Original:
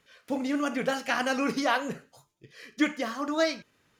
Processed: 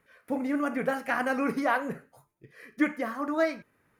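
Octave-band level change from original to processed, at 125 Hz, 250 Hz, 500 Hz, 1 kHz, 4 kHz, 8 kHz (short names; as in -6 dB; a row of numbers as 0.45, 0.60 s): 0.0, 0.0, 0.0, 0.0, -12.0, -10.0 dB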